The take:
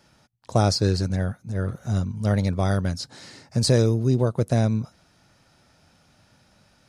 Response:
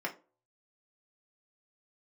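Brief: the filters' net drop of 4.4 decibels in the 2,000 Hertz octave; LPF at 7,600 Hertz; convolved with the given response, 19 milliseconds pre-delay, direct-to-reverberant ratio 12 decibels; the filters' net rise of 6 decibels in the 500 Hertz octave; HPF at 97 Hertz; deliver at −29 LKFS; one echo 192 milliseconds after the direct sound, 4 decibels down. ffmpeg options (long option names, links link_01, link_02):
-filter_complex "[0:a]highpass=97,lowpass=7600,equalizer=frequency=500:width_type=o:gain=7.5,equalizer=frequency=2000:width_type=o:gain=-7,aecho=1:1:192:0.631,asplit=2[link_01][link_02];[1:a]atrim=start_sample=2205,adelay=19[link_03];[link_02][link_03]afir=irnorm=-1:irlink=0,volume=-16.5dB[link_04];[link_01][link_04]amix=inputs=2:normalize=0,volume=-8.5dB"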